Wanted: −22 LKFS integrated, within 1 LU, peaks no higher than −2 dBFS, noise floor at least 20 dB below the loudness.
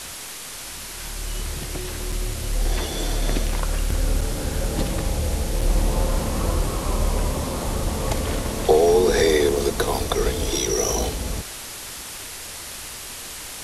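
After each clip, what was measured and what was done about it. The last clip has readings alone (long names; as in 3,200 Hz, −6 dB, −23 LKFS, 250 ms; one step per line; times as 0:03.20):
number of dropouts 3; longest dropout 4.7 ms; background noise floor −35 dBFS; target noise floor −45 dBFS; integrated loudness −24.5 LKFS; sample peak −5.5 dBFS; target loudness −22.0 LKFS
→ repair the gap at 0:02.12/0:04.21/0:05.61, 4.7 ms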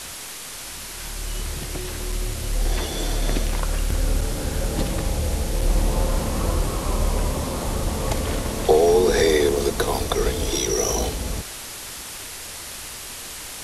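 number of dropouts 0; background noise floor −35 dBFS; target noise floor −45 dBFS
→ broadband denoise 10 dB, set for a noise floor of −35 dBFS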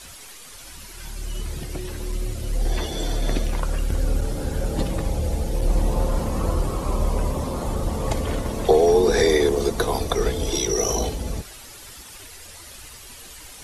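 background noise floor −42 dBFS; target noise floor −44 dBFS
→ broadband denoise 6 dB, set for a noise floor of −42 dBFS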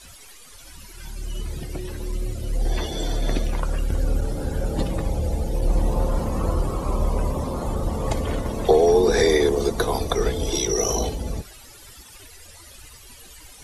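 background noise floor −46 dBFS; integrated loudness −24.0 LKFS; sample peak −5.5 dBFS; target loudness −22.0 LKFS
→ level +2 dB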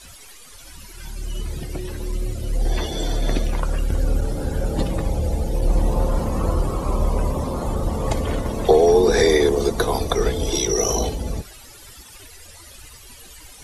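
integrated loudness −22.0 LKFS; sample peak −3.5 dBFS; background noise floor −44 dBFS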